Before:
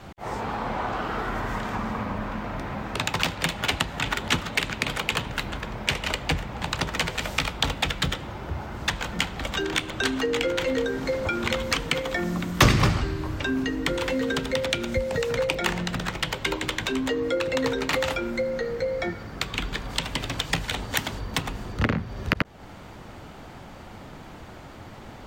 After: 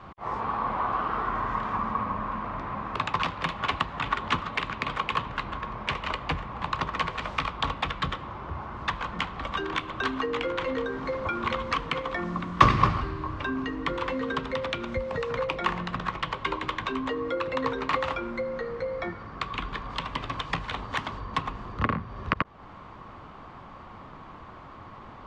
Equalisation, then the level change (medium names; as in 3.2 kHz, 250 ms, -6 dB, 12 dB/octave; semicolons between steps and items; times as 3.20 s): low-pass 3.5 kHz 12 dB/octave; peaking EQ 1.1 kHz +15 dB 0.34 oct; -5.0 dB